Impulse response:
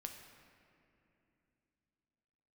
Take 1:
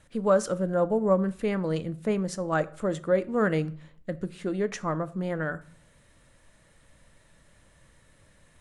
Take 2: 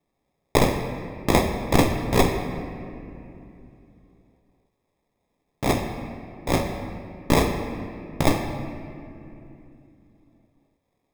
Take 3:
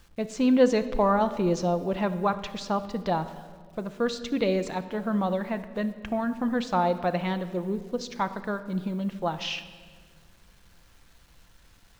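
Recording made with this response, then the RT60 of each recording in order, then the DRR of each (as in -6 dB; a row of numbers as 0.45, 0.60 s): 2; 0.60, 2.9, 1.8 s; 13.0, 3.5, 9.5 dB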